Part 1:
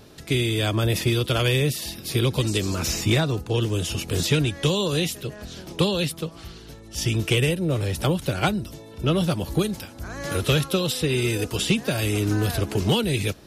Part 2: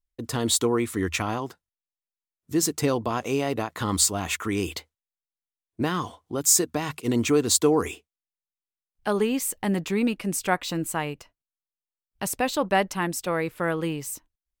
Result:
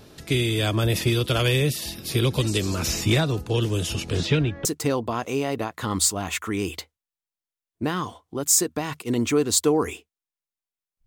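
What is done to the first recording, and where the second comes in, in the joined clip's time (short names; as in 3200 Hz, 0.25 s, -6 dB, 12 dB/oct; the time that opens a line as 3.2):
part 1
3.93–4.65 LPF 11000 Hz -> 1300 Hz
4.65 switch to part 2 from 2.63 s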